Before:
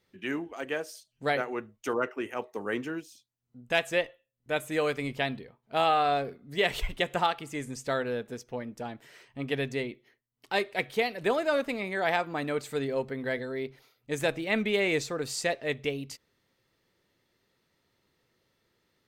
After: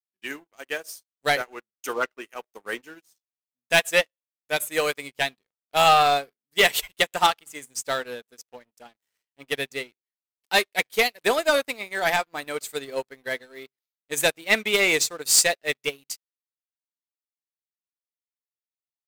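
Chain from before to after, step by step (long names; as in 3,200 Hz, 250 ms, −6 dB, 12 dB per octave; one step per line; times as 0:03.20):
RIAA equalisation recording
leveller curve on the samples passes 3
expander for the loud parts 2.5 to 1, over −37 dBFS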